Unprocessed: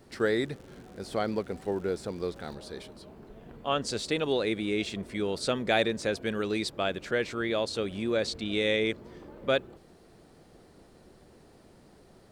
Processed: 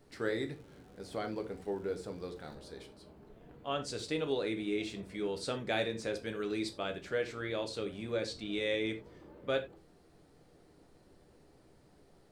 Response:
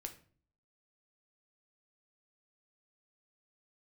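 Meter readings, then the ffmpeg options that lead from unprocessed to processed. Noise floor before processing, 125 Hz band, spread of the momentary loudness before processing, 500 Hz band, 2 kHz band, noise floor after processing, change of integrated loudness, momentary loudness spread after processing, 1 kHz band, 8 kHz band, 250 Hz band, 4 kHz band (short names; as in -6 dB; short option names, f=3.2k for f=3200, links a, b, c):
-57 dBFS, -6.0 dB, 17 LU, -6.5 dB, -7.5 dB, -63 dBFS, -6.5 dB, 16 LU, -7.5 dB, -7.5 dB, -6.5 dB, -7.5 dB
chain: -filter_complex "[1:a]atrim=start_sample=2205,afade=t=out:st=0.15:d=0.01,atrim=end_sample=7056[a];[0:a][a]afir=irnorm=-1:irlink=0,volume=-3.5dB"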